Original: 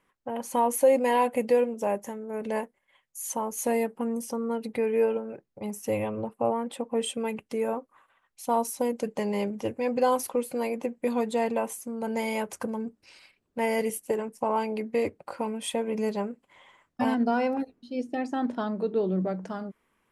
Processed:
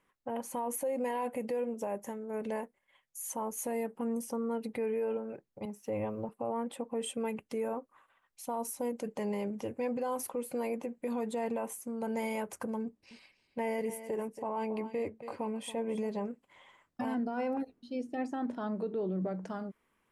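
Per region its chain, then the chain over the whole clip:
0:05.65–0:06.29: low-pass filter 2,100 Hz 6 dB per octave + bit-depth reduction 12 bits, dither none + multiband upward and downward expander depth 70%
0:12.83–0:16.28: high-shelf EQ 6,500 Hz −7 dB + notch filter 1,400 Hz, Q 5.9 + single-tap delay 278 ms −16 dB
whole clip: dynamic equaliser 4,300 Hz, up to −6 dB, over −49 dBFS, Q 0.91; brickwall limiter −23.5 dBFS; level −3.5 dB

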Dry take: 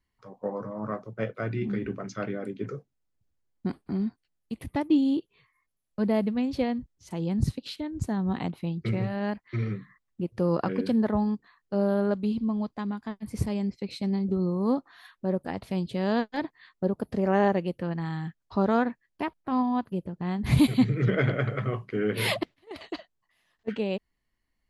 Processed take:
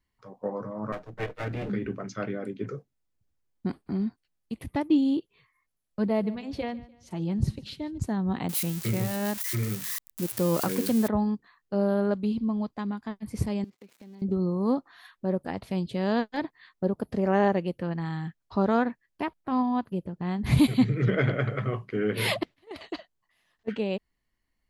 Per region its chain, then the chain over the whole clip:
0:00.92–0:01.70: lower of the sound and its delayed copy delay 6.5 ms + parametric band 1,000 Hz −6 dB 0.26 octaves
0:06.05–0:07.98: high-shelf EQ 5,800 Hz −4 dB + notch comb filter 250 Hz + repeating echo 148 ms, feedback 34%, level −19.5 dB
0:08.49–0:11.08: spike at every zero crossing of −24 dBFS + high-shelf EQ 9,000 Hz +5.5 dB
0:13.64–0:14.22: gap after every zero crossing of 0.13 ms + high-pass filter 200 Hz + downward compressor 4 to 1, threshold −48 dBFS
whole clip: no processing

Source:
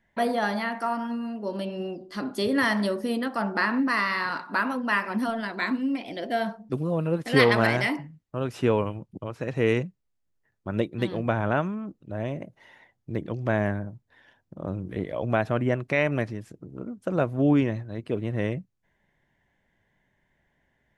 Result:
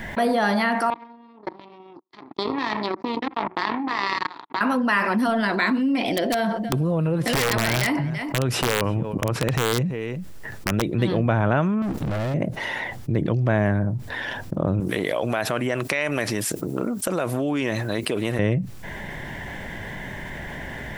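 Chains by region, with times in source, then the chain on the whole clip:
0:00.90–0:04.61: output level in coarse steps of 14 dB + power curve on the samples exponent 3 + loudspeaker in its box 140–4,000 Hz, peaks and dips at 190 Hz −7 dB, 320 Hz +6 dB, 560 Hz −8 dB, 950 Hz +6 dB, 1,500 Hz −10 dB, 2,900 Hz −8 dB
0:06.10–0:10.92: downward compressor 4 to 1, threshold −28 dBFS + single-tap delay 333 ms −23 dB + wrap-around overflow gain 22.5 dB
0:11.82–0:12.34: parametric band 66 Hz +5 dB 0.71 octaves + downward compressor 10 to 1, threshold −45 dBFS + leveller curve on the samples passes 5
0:14.80–0:18.39: RIAA equalisation recording + downward compressor 3 to 1, threshold −36 dBFS
whole clip: dynamic equaliser 130 Hz, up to +5 dB, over −43 dBFS, Q 2.2; notch filter 6,500 Hz, Q 23; envelope flattener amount 70%; level +1.5 dB

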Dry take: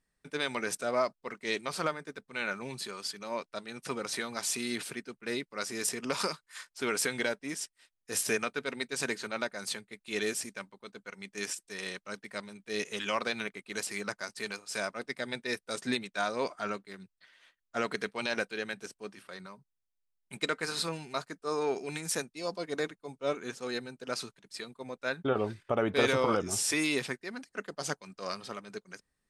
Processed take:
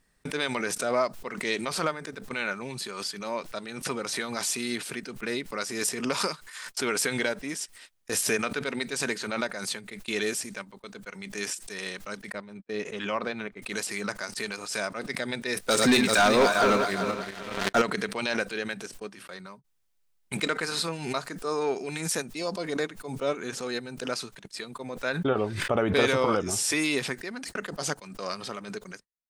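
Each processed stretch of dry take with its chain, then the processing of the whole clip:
0:12.32–0:13.62: low-pass filter 1,400 Hz 6 dB per octave + downward expander −45 dBFS
0:15.58–0:17.82: feedback delay that plays each chunk backwards 192 ms, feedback 57%, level −7.5 dB + leveller curve on the samples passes 3
whole clip: noise gate −52 dBFS, range −31 dB; background raised ahead of every attack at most 58 dB per second; level +3 dB

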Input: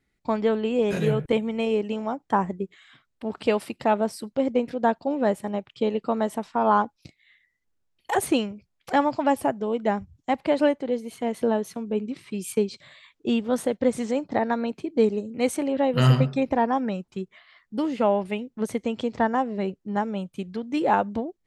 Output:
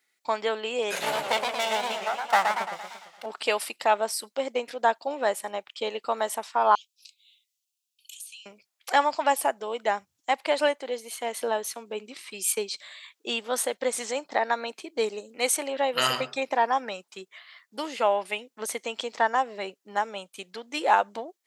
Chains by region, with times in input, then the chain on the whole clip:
0:00.95–0:03.26: lower of the sound and its delayed copy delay 1.4 ms + feedback echo with a swinging delay time 114 ms, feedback 55%, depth 202 cents, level −5 dB
0:06.75–0:08.46: Butterworth high-pass 2,500 Hz 96 dB per octave + downward compressor 12 to 1, threshold −48 dBFS
whole clip: high-pass filter 680 Hz 12 dB per octave; high-shelf EQ 3,500 Hz +9.5 dB; level +2 dB

